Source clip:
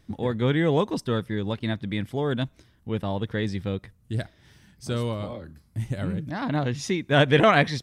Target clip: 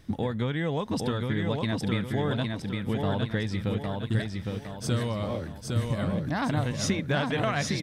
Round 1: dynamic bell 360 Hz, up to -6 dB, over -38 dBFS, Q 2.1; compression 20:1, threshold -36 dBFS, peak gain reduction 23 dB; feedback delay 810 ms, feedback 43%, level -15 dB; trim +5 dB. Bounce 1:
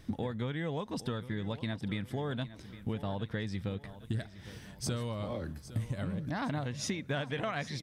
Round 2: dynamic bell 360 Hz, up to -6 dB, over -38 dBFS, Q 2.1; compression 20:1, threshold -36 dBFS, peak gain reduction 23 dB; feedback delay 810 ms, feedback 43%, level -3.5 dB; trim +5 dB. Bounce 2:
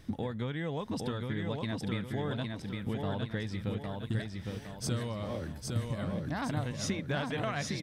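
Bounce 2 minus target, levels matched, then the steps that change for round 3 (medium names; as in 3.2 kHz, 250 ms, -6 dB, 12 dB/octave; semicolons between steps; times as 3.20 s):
compression: peak gain reduction +6.5 dB
change: compression 20:1, threshold -29 dBFS, peak gain reduction 16.5 dB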